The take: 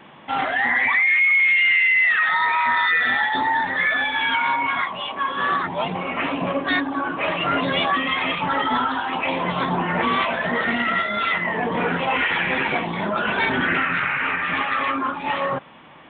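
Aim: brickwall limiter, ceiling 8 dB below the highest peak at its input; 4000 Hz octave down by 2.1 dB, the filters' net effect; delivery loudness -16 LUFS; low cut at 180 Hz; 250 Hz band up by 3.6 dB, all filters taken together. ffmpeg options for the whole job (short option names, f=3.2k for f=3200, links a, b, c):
-af "highpass=180,equalizer=f=250:t=o:g=5.5,equalizer=f=4k:t=o:g=-3,volume=7.5dB,alimiter=limit=-9dB:level=0:latency=1"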